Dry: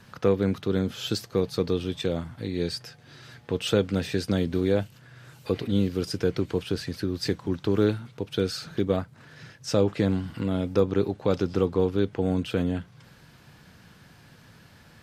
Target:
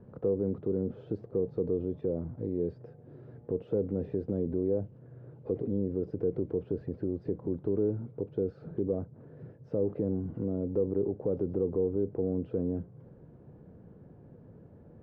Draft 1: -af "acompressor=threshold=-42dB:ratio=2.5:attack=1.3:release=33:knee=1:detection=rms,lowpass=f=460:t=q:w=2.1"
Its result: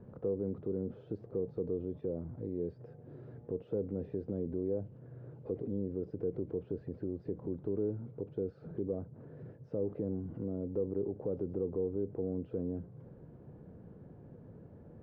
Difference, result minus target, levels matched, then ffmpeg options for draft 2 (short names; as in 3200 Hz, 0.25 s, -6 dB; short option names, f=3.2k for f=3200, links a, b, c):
compressor: peak gain reduction +5.5 dB
-af "acompressor=threshold=-33dB:ratio=2.5:attack=1.3:release=33:knee=1:detection=rms,lowpass=f=460:t=q:w=2.1"